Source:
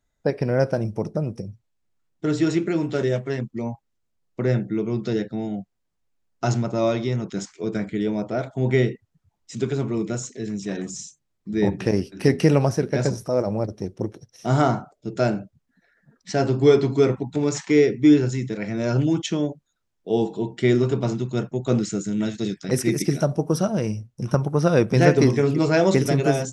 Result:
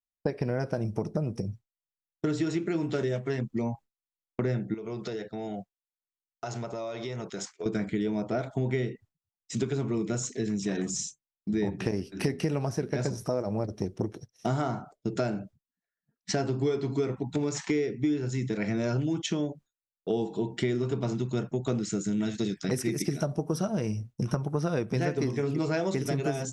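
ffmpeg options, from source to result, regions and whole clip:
ffmpeg -i in.wav -filter_complex "[0:a]asettb=1/sr,asplit=3[link_01][link_02][link_03];[link_01]atrim=end=4.744[link_04];[link_02]atrim=start=4.74:end=7.66,asetpts=PTS-STARTPTS,afade=type=in:duration=0.004:curve=qsin,afade=type=out:start_time=2.916:duration=0.004:curve=qsin,lowshelf=frequency=370:width_type=q:width=1.5:gain=-7,acompressor=threshold=-33dB:ratio=16:attack=3.2:release=140:knee=1:detection=peak[link_05];[link_03]atrim=start=7.656[link_06];[link_04][link_05]acrossfade=duration=0.004:curve1=hsin:curve2=qsin[link_07];[link_07][link_06]acrossfade=duration=0.004:curve1=qsin:curve2=hsin,bandreject=frequency=540:width=13,agate=range=-33dB:threshold=-38dB:ratio=3:detection=peak,acompressor=threshold=-29dB:ratio=6,volume=3dB" out.wav

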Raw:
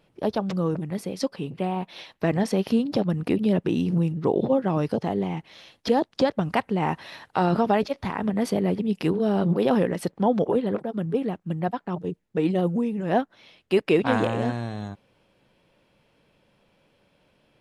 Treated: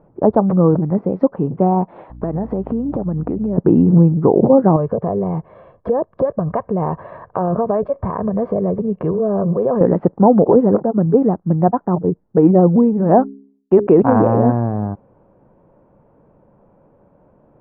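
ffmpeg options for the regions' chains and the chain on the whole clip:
ffmpeg -i in.wav -filter_complex "[0:a]asettb=1/sr,asplit=3[link_01][link_02][link_03];[link_01]atrim=end=2.104[link_04];[link_02]atrim=start=2.1:end=3.58,asetpts=PTS-STARTPTS,afade=type=in:duration=0.004:curve=qsin,afade=type=out:start_time=1.476:duration=0.004:curve=qsin,acompressor=threshold=-30dB:ratio=6:attack=3.2:release=140:knee=1:detection=peak,aeval=exprs='val(0)+0.00447*(sin(2*PI*60*n/s)+sin(2*PI*2*60*n/s)/2+sin(2*PI*3*60*n/s)/3+sin(2*PI*4*60*n/s)/4+sin(2*PI*5*60*n/s)/5)':channel_layout=same[link_05];[link_03]atrim=start=3.576[link_06];[link_04][link_05]acrossfade=duration=0.004:curve1=hsin:curve2=qsin[link_07];[link_07][link_06]acrossfade=duration=0.004:curve1=qsin:curve2=hsin,asettb=1/sr,asplit=3[link_08][link_09][link_10];[link_08]atrim=end=4.764[link_11];[link_09]atrim=start=4.76:end=9.81,asetpts=PTS-STARTPTS,afade=type=in:duration=0.004:curve=qsin,afade=type=out:start_time=5.046:duration=0.004:curve=qsin,aecho=1:1:1.8:0.61,atrim=end_sample=222705,acompressor=threshold=-30dB:ratio=2.5:attack=3.2:release=140:knee=1:detection=peak[link_12];[link_10]atrim=start=9.806[link_13];[link_11][link_12]acrossfade=duration=0.004:curve1=hsin:curve2=qsin[link_14];[link_14][link_13]acrossfade=duration=0.004:curve1=qsin:curve2=hsin,asettb=1/sr,asplit=3[link_15][link_16][link_17];[link_15]atrim=end=12.764[link_18];[link_16]atrim=start=12.76:end=13.87,asetpts=PTS-STARTPTS,afade=type=in:duration=0.004:curve=qsin,afade=type=out:start_time=1.106:duration=0.004:curve=qsin,agate=range=-38dB:threshold=-43dB:ratio=16:release=100:detection=peak,bandreject=frequency=68.22:width_type=h:width=4,bandreject=frequency=136.44:width_type=h:width=4,bandreject=frequency=204.66:width_type=h:width=4,bandreject=frequency=272.88:width_type=h:width=4,bandreject=frequency=341.1:width_type=h:width=4,bandreject=frequency=409.32:width_type=h:width=4[link_19];[link_17]atrim=start=13.866[link_20];[link_18][link_19]acrossfade=duration=0.004:curve1=hsin:curve2=qsin[link_21];[link_21][link_20]acrossfade=duration=0.004:curve1=qsin:curve2=hsin,lowpass=frequency=1100:width=0.5412,lowpass=frequency=1100:width=1.3066,alimiter=level_in=13.5dB:limit=-1dB:release=50:level=0:latency=1,volume=-1dB" out.wav

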